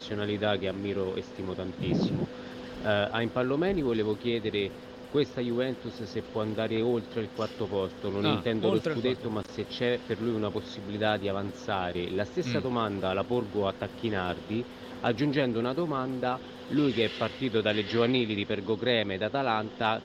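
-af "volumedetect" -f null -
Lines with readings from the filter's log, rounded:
mean_volume: -29.8 dB
max_volume: -12.1 dB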